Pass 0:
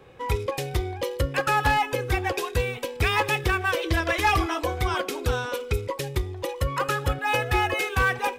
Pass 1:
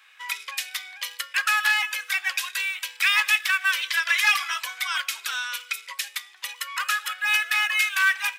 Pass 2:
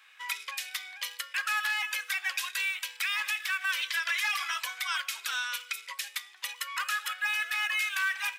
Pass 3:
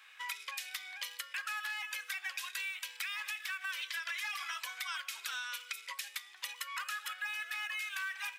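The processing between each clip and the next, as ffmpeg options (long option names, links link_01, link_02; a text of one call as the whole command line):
ffmpeg -i in.wav -af "highpass=frequency=1500:width=0.5412,highpass=frequency=1500:width=1.3066,volume=6.5dB" out.wav
ffmpeg -i in.wav -af "alimiter=limit=-17.5dB:level=0:latency=1:release=68,volume=-3dB" out.wav
ffmpeg -i in.wav -af "acompressor=threshold=-39dB:ratio=3" out.wav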